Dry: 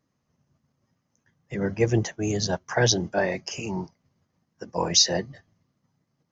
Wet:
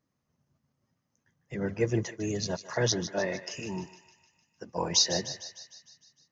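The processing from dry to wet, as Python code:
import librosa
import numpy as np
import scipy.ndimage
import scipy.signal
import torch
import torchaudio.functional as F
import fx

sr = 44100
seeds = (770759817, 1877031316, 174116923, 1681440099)

y = fx.notch_comb(x, sr, f0_hz=780.0, at=(1.8, 3.83))
y = fx.echo_thinned(y, sr, ms=152, feedback_pct=61, hz=800.0, wet_db=-11.0)
y = y * librosa.db_to_amplitude(-5.0)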